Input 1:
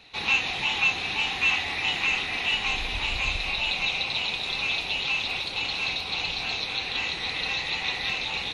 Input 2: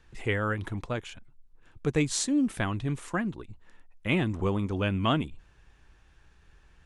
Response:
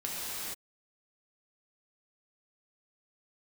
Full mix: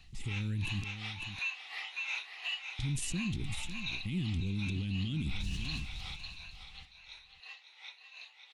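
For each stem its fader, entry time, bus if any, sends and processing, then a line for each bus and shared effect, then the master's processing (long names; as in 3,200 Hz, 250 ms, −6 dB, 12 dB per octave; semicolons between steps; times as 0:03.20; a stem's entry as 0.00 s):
0:06.10 −9 dB → 0:06.37 −19.5 dB, 0.00 s, no send, echo send −8 dB, rippled gain that drifts along the octave scale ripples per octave 1.5, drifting +1.2 Hz, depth 9 dB; high-pass filter 930 Hz 12 dB per octave; tremolo with a sine in dB 2.8 Hz, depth 21 dB
+2.0 dB, 0.00 s, muted 0:00.84–0:02.79, no send, echo send −14 dB, Chebyshev band-stop filter 180–4,300 Hz, order 2; level that may fall only so fast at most 22 dB per second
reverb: not used
echo: single-tap delay 550 ms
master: brickwall limiter −27 dBFS, peak gain reduction 10.5 dB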